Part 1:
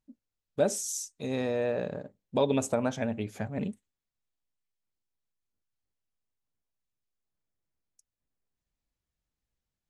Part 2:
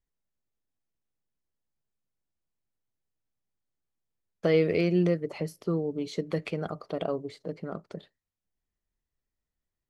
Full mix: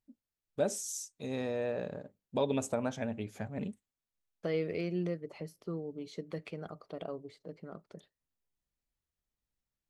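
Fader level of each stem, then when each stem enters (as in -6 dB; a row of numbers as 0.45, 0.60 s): -5.0, -10.0 dB; 0.00, 0.00 s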